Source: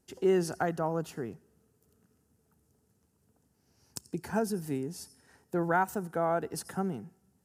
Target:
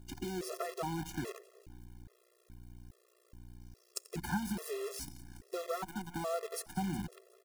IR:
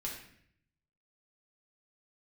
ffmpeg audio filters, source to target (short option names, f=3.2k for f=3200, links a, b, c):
-filter_complex "[0:a]bandreject=f=60:t=h:w=6,bandreject=f=120:t=h:w=6,bandreject=f=180:t=h:w=6,bandreject=f=240:t=h:w=6,aeval=exprs='val(0)+0.00251*(sin(2*PI*60*n/s)+sin(2*PI*2*60*n/s)/2+sin(2*PI*3*60*n/s)/3+sin(2*PI*4*60*n/s)/4+sin(2*PI*5*60*n/s)/5)':c=same,acompressor=threshold=-33dB:ratio=12,asettb=1/sr,asplit=3[a][b][c];[a]atrim=end=0.644[d];[b]atrim=start=0.64:end=1.31,asetpts=PTS-STARTPTS,afade=t=in:d=0.004:c=qsin,afade=t=out:st=0.666:d=0.004:c=qsin,equalizer=f=550:w=6.7:g=-11[e];[c]atrim=start=1.306[f];[d][e]acrossfade=d=0.004:c1=hsin:c2=qsin[g];[g][f]acrossfade=d=0.004:c1=qsin:c2=hsin,asettb=1/sr,asplit=3[h][i][j];[h]atrim=end=5.664[k];[i]atrim=start=5.66:end=6.79,asetpts=PTS-STARTPTS,afade=t=in:d=0.004:c=qsin,afade=t=out:st=1.126:d=0.004:c=qsin,agate=range=-33dB:threshold=-37dB:ratio=3:detection=peak[l];[j]atrim=start=6.786[m];[k][l]acrossfade=d=0.004:c1=hsin:c2=qsin[n];[n][m]acrossfade=d=0.004:c1=qsin:c2=hsin,asplit=2[o][p];[p]aecho=0:1:182|364|546|728|910|1092:0.168|0.0974|0.0565|0.0328|0.019|0.011[q];[o][q]amix=inputs=2:normalize=0,acrusher=bits=8:dc=4:mix=0:aa=0.000001,afftfilt=real='re*gt(sin(2*PI*1.2*pts/sr)*(1-2*mod(floor(b*sr/1024/350),2)),0)':imag='im*gt(sin(2*PI*1.2*pts/sr)*(1-2*mod(floor(b*sr/1024/350),2)),0)':win_size=1024:overlap=0.75,volume=4dB"